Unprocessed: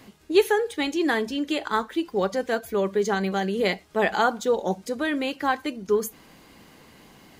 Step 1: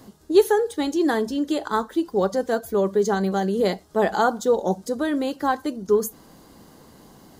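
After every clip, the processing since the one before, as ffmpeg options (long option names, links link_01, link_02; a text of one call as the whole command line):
ffmpeg -i in.wav -af "equalizer=frequency=2400:width=1.5:gain=-15,volume=3.5dB" out.wav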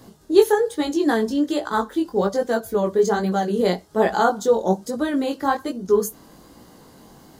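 ffmpeg -i in.wav -af "flanger=delay=16.5:depth=6.1:speed=1.2,volume=4.5dB" out.wav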